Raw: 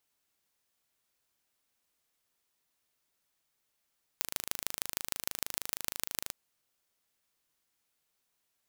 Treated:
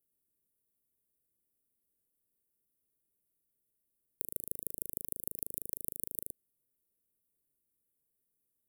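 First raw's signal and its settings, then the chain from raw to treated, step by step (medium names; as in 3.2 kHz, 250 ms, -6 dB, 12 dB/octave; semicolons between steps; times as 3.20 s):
pulse train 26.3 per s, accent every 4, -3 dBFS 2.10 s
inverse Chebyshev band-stop 1.4–3.7 kHz, stop band 70 dB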